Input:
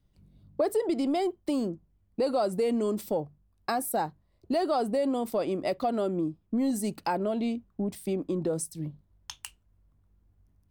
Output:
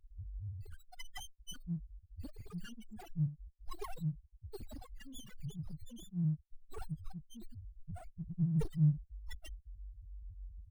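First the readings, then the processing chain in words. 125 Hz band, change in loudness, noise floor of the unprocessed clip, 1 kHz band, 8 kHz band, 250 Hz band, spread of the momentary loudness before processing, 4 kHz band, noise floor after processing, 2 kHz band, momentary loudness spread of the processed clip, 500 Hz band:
+4.5 dB, −10.5 dB, −69 dBFS, −24.0 dB, −15.5 dB, −12.0 dB, 15 LU, −11.5 dB, −68 dBFS, −15.5 dB, 19 LU, −27.0 dB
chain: Chebyshev band-stop filter 170–3,000 Hz, order 5
comb filter 2.6 ms, depth 97%
spectral peaks only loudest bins 1
windowed peak hold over 9 samples
level +18 dB

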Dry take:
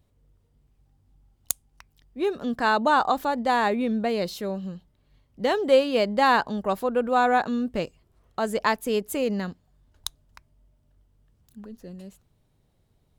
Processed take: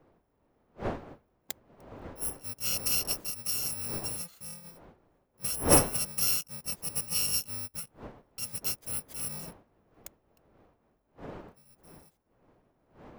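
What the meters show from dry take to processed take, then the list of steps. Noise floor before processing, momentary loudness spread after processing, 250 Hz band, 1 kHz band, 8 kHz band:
−67 dBFS, 20 LU, −12.5 dB, −17.5 dB, +9.0 dB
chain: samples in bit-reversed order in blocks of 128 samples
wind on the microphone 600 Hz −33 dBFS
expander for the loud parts 1.5 to 1, over −43 dBFS
level −5 dB

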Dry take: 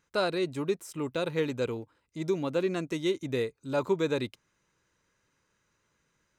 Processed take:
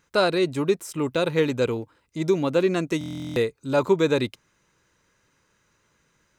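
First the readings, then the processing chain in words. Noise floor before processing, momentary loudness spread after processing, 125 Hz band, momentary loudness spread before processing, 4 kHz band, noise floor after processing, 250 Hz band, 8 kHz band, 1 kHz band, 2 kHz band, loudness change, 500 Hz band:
−76 dBFS, 8 LU, +7.5 dB, 6 LU, +6.5 dB, −68 dBFS, +7.0 dB, +7.0 dB, +7.5 dB, +7.0 dB, +7.0 dB, +7.0 dB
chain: buffer that repeats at 0:02.99, samples 1,024, times 15
level +7.5 dB

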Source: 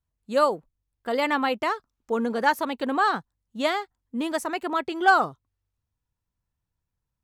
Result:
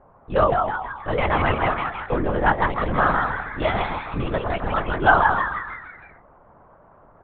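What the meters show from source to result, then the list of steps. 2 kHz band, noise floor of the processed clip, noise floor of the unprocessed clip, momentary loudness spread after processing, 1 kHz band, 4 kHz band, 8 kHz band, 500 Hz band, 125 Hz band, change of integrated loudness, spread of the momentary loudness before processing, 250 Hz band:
+4.0 dB, −53 dBFS, −84 dBFS, 10 LU, +4.0 dB, −1.5 dB, below −35 dB, +3.5 dB, +22.0 dB, +3.0 dB, 11 LU, +0.5 dB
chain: low-pass filter 2,800 Hz 12 dB per octave
noise in a band 250–1,100 Hz −56 dBFS
echo with shifted repeats 158 ms, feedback 50%, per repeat +140 Hz, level −4 dB
linear-prediction vocoder at 8 kHz whisper
level +2.5 dB

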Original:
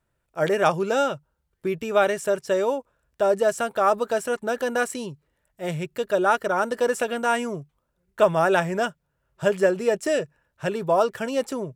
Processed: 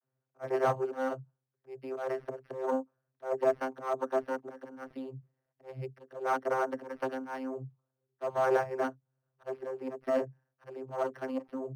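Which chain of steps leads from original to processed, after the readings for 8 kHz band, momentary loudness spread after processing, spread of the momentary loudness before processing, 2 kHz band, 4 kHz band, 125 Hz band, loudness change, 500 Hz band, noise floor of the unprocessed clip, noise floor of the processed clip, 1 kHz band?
below −20 dB, 16 LU, 11 LU, −14.0 dB, −19.5 dB, −11.0 dB, −10.5 dB, −10.5 dB, −75 dBFS, below −85 dBFS, −10.5 dB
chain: dynamic equaliser 970 Hz, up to +4 dB, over −33 dBFS, Q 0.93
harmonic generator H 3 −14 dB, 6 −24 dB, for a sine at −2.5 dBFS
low-shelf EQ 170 Hz −9 dB
hard clipping −17 dBFS, distortion −10 dB
volume swells 220 ms
channel vocoder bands 32, saw 131 Hz
linearly interpolated sample-rate reduction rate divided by 6×

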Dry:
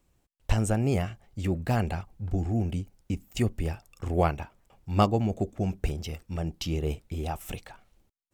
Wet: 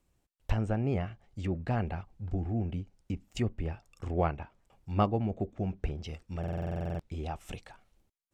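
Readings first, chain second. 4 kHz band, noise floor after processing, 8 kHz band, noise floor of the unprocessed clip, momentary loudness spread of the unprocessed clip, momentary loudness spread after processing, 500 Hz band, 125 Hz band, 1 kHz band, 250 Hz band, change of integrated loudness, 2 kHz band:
−8.5 dB, −77 dBFS, −14.0 dB, −72 dBFS, 12 LU, 12 LU, −4.5 dB, −4.5 dB, −4.5 dB, −4.5 dB, −4.5 dB, −5.5 dB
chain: treble cut that deepens with the level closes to 2,600 Hz, closed at −25 dBFS
buffer that repeats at 0:06.39, samples 2,048, times 12
level −4.5 dB

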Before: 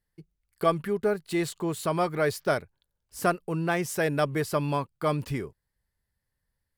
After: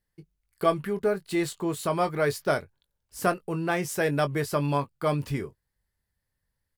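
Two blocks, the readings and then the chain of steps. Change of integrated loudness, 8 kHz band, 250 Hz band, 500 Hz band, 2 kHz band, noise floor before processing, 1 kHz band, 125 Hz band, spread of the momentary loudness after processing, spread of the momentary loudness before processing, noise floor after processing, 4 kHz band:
+0.5 dB, +0.5 dB, +0.5 dB, +0.5 dB, +0.5 dB, −83 dBFS, +0.5 dB, +0.5 dB, 5 LU, 5 LU, −82 dBFS, +0.5 dB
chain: double-tracking delay 21 ms −10 dB

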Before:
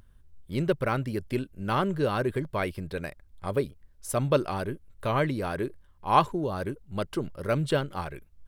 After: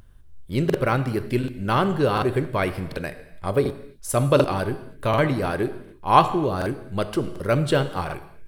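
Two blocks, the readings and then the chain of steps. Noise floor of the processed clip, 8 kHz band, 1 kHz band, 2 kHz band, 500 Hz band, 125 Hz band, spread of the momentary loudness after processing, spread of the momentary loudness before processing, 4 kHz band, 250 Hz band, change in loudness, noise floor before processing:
−47 dBFS, +6.0 dB, +6.0 dB, +5.5 dB, +6.0 dB, +6.0 dB, 11 LU, 11 LU, +6.0 dB, +6.0 dB, +6.0 dB, −58 dBFS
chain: reverb whose tail is shaped and stops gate 350 ms falling, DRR 10 dB
regular buffer underruns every 0.74 s, samples 2,048, repeat, from 0:00.65
level +5.5 dB

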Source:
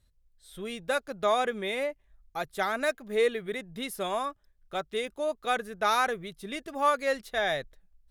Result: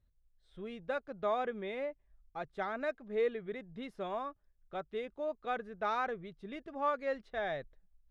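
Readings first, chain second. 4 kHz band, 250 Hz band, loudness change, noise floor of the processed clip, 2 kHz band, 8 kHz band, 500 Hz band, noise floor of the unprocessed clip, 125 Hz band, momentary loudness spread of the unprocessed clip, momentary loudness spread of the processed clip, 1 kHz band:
−15.5 dB, −6.0 dB, −8.0 dB, −73 dBFS, −10.5 dB, below −25 dB, −6.5 dB, −68 dBFS, −5.5 dB, 11 LU, 12 LU, −8.0 dB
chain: head-to-tape spacing loss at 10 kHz 30 dB
level −5 dB

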